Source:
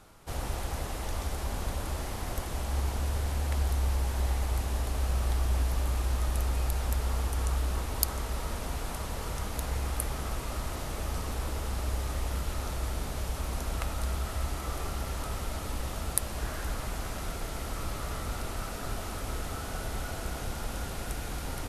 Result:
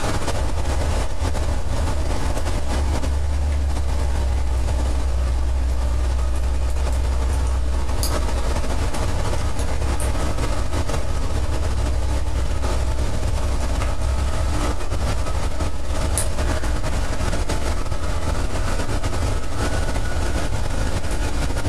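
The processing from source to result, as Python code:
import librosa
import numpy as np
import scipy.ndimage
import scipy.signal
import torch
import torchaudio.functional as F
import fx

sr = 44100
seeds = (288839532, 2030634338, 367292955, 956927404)

y = scipy.signal.sosfilt(scipy.signal.butter(4, 9700.0, 'lowpass', fs=sr, output='sos'), x)
y = fx.room_shoebox(y, sr, seeds[0], volume_m3=150.0, walls='furnished', distance_m=2.6)
y = fx.env_flatten(y, sr, amount_pct=100)
y = y * librosa.db_to_amplitude(-6.0)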